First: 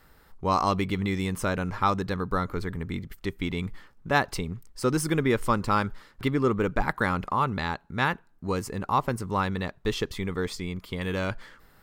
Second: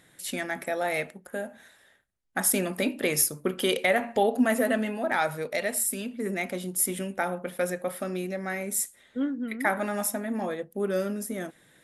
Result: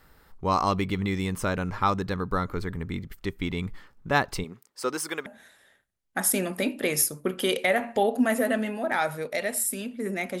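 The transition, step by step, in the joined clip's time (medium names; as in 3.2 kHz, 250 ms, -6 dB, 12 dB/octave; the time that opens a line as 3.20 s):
first
4.43–5.26 s: high-pass 250 Hz -> 690 Hz
5.26 s: go over to second from 1.46 s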